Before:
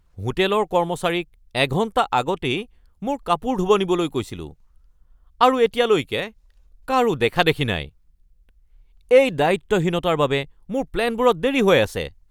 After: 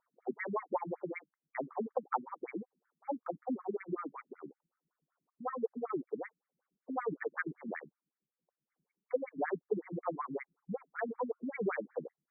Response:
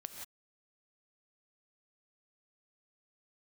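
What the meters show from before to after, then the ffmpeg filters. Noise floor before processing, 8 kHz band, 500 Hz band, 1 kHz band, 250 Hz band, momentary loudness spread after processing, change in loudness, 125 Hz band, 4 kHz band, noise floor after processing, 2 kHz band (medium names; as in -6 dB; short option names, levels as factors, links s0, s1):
-59 dBFS, under -40 dB, -18.5 dB, -18.0 dB, -17.0 dB, 10 LU, -19.0 dB, -23.0 dB, under -40 dB, under -85 dBFS, -18.5 dB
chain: -af "acompressor=threshold=0.112:ratio=6,asubboost=boost=4.5:cutoff=73,afftfilt=real='re*between(b*sr/1024,210*pow(1700/210,0.5+0.5*sin(2*PI*5.3*pts/sr))/1.41,210*pow(1700/210,0.5+0.5*sin(2*PI*5.3*pts/sr))*1.41)':imag='im*between(b*sr/1024,210*pow(1700/210,0.5+0.5*sin(2*PI*5.3*pts/sr))/1.41,210*pow(1700/210,0.5+0.5*sin(2*PI*5.3*pts/sr))*1.41)':win_size=1024:overlap=0.75,volume=0.562"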